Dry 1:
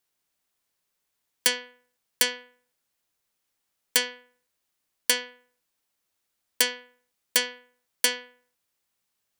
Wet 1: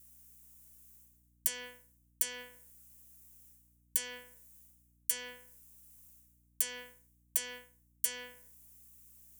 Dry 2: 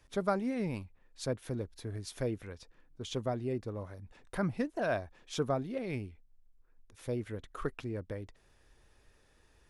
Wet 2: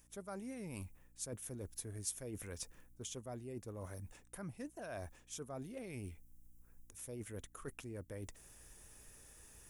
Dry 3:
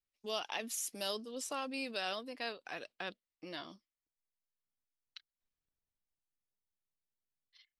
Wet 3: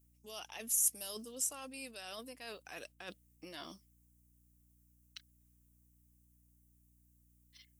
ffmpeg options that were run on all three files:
-af "equalizer=f=2800:t=o:w=0.77:g=2.5,areverse,acompressor=threshold=0.00562:ratio=10,areverse,aexciter=amount=8.7:drive=2.9:freq=6100,aeval=exprs='val(0)+0.000316*(sin(2*PI*60*n/s)+sin(2*PI*2*60*n/s)/2+sin(2*PI*3*60*n/s)/3+sin(2*PI*4*60*n/s)/4+sin(2*PI*5*60*n/s)/5)':c=same,volume=1.19"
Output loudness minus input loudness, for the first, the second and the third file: -9.5 LU, -10.5 LU, +2.0 LU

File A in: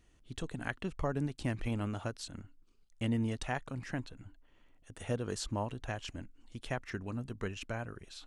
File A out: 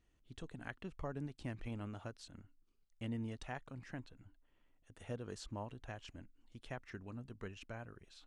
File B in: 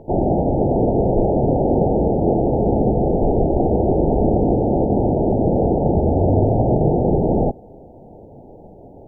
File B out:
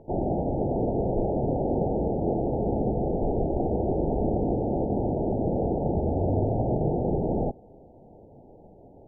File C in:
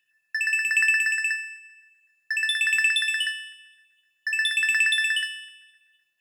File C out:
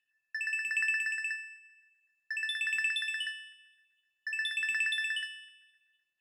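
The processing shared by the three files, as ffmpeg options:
-af "highshelf=f=8200:g=-8.5,volume=0.355"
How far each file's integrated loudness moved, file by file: -9.0 LU, -9.0 LU, -9.5 LU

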